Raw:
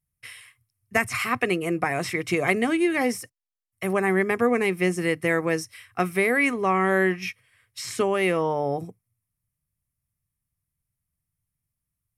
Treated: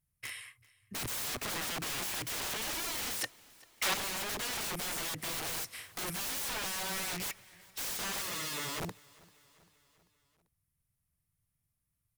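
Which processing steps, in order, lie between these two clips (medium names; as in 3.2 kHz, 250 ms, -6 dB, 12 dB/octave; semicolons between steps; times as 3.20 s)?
5.31–6.02 s: spectral contrast reduction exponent 0.59; peak limiter -16.5 dBFS, peak gain reduction 10.5 dB; integer overflow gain 32 dB; 3.21–3.94 s: overdrive pedal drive 17 dB, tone 5.5 kHz, clips at -16.5 dBFS; 8.22–8.78 s: comb of notches 770 Hz; feedback delay 392 ms, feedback 58%, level -24 dB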